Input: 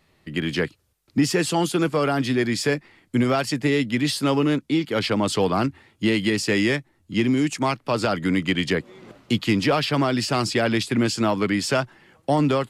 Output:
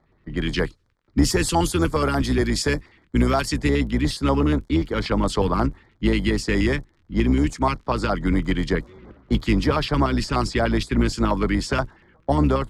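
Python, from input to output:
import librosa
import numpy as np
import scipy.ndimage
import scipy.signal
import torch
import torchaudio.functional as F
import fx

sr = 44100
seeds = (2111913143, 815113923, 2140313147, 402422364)

y = fx.octave_divider(x, sr, octaves=2, level_db=-1.0)
y = fx.high_shelf(y, sr, hz=3800.0, db=fx.steps((0.0, 4.0), (3.68, -5.0)))
y = fx.dmg_crackle(y, sr, seeds[0], per_s=56.0, level_db=-42.0)
y = fx.env_lowpass(y, sr, base_hz=1700.0, full_db=-17.0)
y = fx.dynamic_eq(y, sr, hz=970.0, q=1.6, threshold_db=-39.0, ratio=4.0, max_db=5)
y = fx.filter_lfo_notch(y, sr, shape='square', hz=8.4, low_hz=700.0, high_hz=2700.0, q=1.0)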